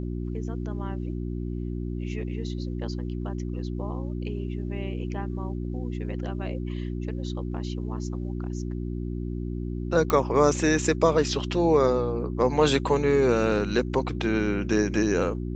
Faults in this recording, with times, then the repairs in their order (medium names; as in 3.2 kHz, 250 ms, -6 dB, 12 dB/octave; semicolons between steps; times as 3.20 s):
hum 60 Hz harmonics 6 -31 dBFS
10.10 s: pop -10 dBFS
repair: de-click; de-hum 60 Hz, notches 6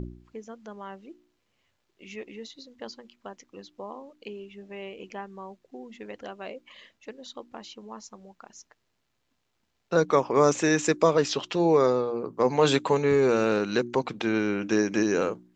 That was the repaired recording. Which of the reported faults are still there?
nothing left